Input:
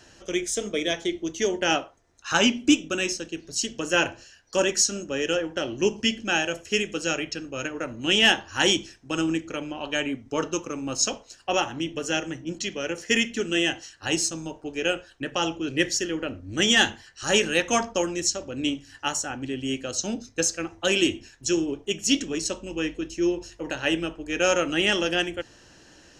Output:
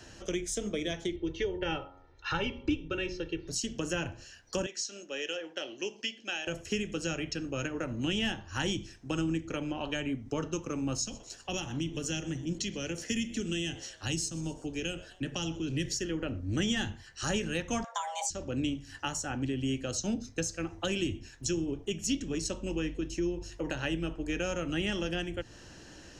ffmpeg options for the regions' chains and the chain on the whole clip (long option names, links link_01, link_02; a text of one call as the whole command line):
ffmpeg -i in.wav -filter_complex "[0:a]asettb=1/sr,asplit=3[link_01][link_02][link_03];[link_01]atrim=end=1.164[link_04];[link_02]atrim=start=1.16:end=3.48,asetpts=PTS-STARTPTS,afade=type=in:duration=0.004:curve=qsin,afade=type=out:start_time=2.316:duration=0.004:curve=qsin,lowpass=frequency=4100:width=0.5412,lowpass=frequency=4100:width=1.3066,aecho=1:1:2.2:0.78,atrim=end_sample=102312,bandreject=frequency=91.51:width_type=h:width=4,bandreject=frequency=183.02:width_type=h:width=4,bandreject=frequency=274.53:width_type=h:width=4,bandreject=frequency=366.04:width_type=h:width=4,bandreject=frequency=457.55:width_type=h:width=4,bandreject=frequency=549.06:width_type=h:width=4,bandreject=frequency=640.57:width_type=h:width=4,bandreject=frequency=732.08:width_type=h:width=4,bandreject=frequency=823.59:width_type=h:width=4,bandreject=frequency=915.1:width_type=h:width=4,bandreject=frequency=1006.61:width_type=h:width=4,bandreject=frequency=1098.12:width_type=h:width=4,bandreject=frequency=1189.63:width_type=h:width=4,bandreject=frequency=1281.14:width_type=h:width=4,bandreject=frequency=1372.65:width_type=h:width=4[link_05];[link_03]atrim=start=3.476[link_06];[link_04][link_05]acrossfade=duration=0.004:curve1=hsin:curve2=qsin[link_07];[link_07][link_06]acrossfade=duration=0.004:curve1=qsin:curve2=hsin,asettb=1/sr,asplit=3[link_08][link_09][link_10];[link_08]atrim=end=4.664[link_11];[link_09]atrim=start=4.66:end=6.47,asetpts=PTS-STARTPTS,afade=type=in:duration=0.004:curve=qsin,afade=type=out:start_time=1.806:duration=0.004:curve=qsin,highpass=660,lowpass=4900,equalizer=frequency=1100:width=0.8:gain=-10.5[link_12];[link_10]atrim=start=6.466[link_13];[link_11][link_12]acrossfade=duration=0.004:curve1=hsin:curve2=qsin[link_14];[link_14][link_13]acrossfade=duration=0.004:curve1=qsin:curve2=hsin,asettb=1/sr,asplit=3[link_15][link_16][link_17];[link_15]atrim=end=10.984[link_18];[link_16]atrim=start=10.98:end=15.93,asetpts=PTS-STARTPTS,afade=type=in:duration=0.004:curve=qsin,afade=type=out:start_time=4.946:duration=0.004:curve=qsin,acrossover=split=270|3000[link_19][link_20][link_21];[link_20]acompressor=threshold=-47dB:ratio=2:attack=3.2:release=140:knee=2.83:detection=peak[link_22];[link_19][link_22][link_21]amix=inputs=3:normalize=0,asplit=4[link_23][link_24][link_25][link_26];[link_24]adelay=125,afreqshift=100,volume=-24dB[link_27];[link_25]adelay=250,afreqshift=200,volume=-29.8dB[link_28];[link_26]adelay=375,afreqshift=300,volume=-35.7dB[link_29];[link_23][link_27][link_28][link_29]amix=inputs=4:normalize=0,atrim=end_sample=218295[link_30];[link_17]atrim=start=15.926[link_31];[link_18][link_30]acrossfade=duration=0.004:curve1=hsin:curve2=qsin[link_32];[link_32][link_31]acrossfade=duration=0.004:curve1=qsin:curve2=hsin,asettb=1/sr,asplit=3[link_33][link_34][link_35];[link_33]atrim=end=17.844[link_36];[link_34]atrim=start=17.84:end=18.3,asetpts=PTS-STARTPTS,afade=type=in:duration=0.004:curve=qsin,afade=type=out:start_time=0.456:duration=0.004:curve=qsin,bandreject=frequency=50:width_type=h:width=6,bandreject=frequency=100:width_type=h:width=6,bandreject=frequency=150:width_type=h:width=6,bandreject=frequency=200:width_type=h:width=6,bandreject=frequency=250:width_type=h:width=6,bandreject=frequency=300:width_type=h:width=6,bandreject=frequency=350:width_type=h:width=6,bandreject=frequency=400:width_type=h:width=6,bandreject=frequency=450:width_type=h:width=6,afreqshift=460[link_37];[link_35]atrim=start=18.296[link_38];[link_36][link_37]acrossfade=duration=0.004:curve1=hsin:curve2=qsin[link_39];[link_39][link_38]acrossfade=duration=0.004:curve1=qsin:curve2=hsin,lowshelf=frequency=240:gain=6,acrossover=split=170[link_40][link_41];[link_41]acompressor=threshold=-32dB:ratio=6[link_42];[link_40][link_42]amix=inputs=2:normalize=0" out.wav